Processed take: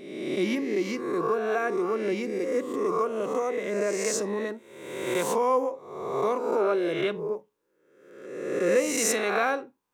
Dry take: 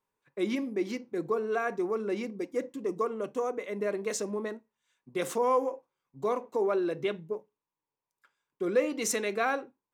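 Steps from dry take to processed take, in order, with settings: reverse spectral sustain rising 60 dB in 1.02 s; in parallel at -2 dB: compression, threshold -39 dBFS, peak gain reduction 18.5 dB

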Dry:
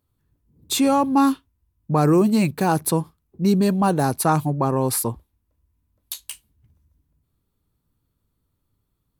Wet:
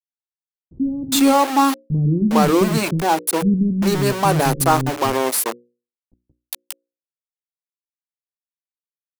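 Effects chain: 2.48–2.95 s: spectral contrast enhancement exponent 1.5; small samples zeroed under -23 dBFS; hum notches 60/120/180/240/300/360/420/480/540 Hz; bands offset in time lows, highs 410 ms, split 270 Hz; trim +4.5 dB

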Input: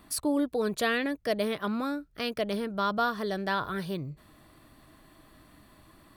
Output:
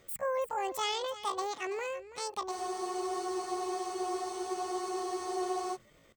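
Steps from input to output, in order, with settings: pitch shift +10.5 st; delay 330 ms -14.5 dB; spectral freeze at 2.52 s, 3.23 s; trim -5.5 dB

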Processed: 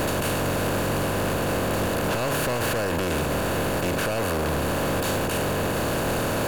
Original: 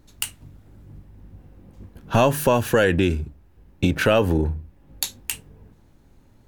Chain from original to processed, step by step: spectral levelling over time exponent 0.2; peak limiter -8.5 dBFS, peak gain reduction 11 dB; overload inside the chain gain 17.5 dB; trim -4 dB

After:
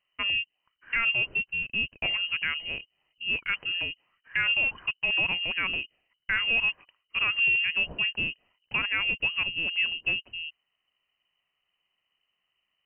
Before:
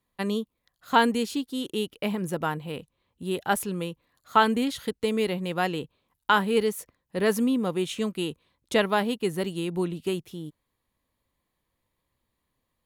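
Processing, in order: frequency inversion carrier 3 kHz; peak limiter -16.5 dBFS, peak gain reduction 10 dB

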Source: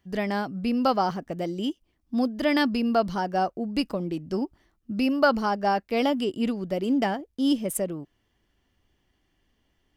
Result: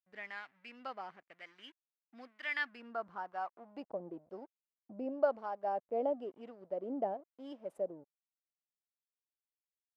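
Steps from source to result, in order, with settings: hysteresis with a dead band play -35 dBFS; band-pass sweep 2 kHz -> 610 Hz, 2.47–4.14 s; harmonic tremolo 1 Hz, depth 70%, crossover 900 Hz; trim -3.5 dB

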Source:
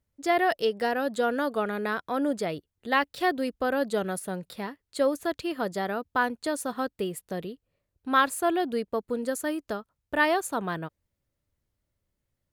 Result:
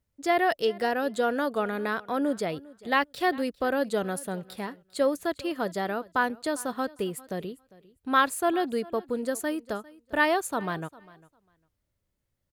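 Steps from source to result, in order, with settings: feedback delay 401 ms, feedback 16%, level -21.5 dB

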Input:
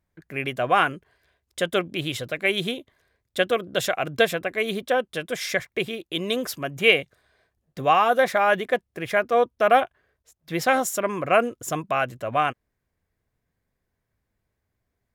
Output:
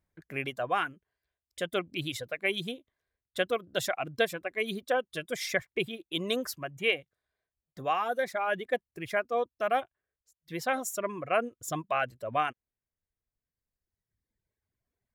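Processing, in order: reverb removal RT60 1.8 s; gain riding within 3 dB 0.5 s; trim -7 dB

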